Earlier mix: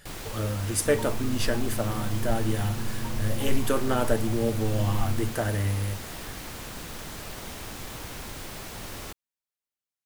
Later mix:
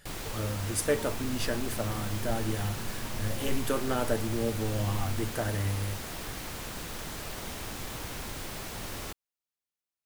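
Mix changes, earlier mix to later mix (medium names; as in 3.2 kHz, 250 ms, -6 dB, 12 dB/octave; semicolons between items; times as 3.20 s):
speech -4.0 dB; second sound -8.0 dB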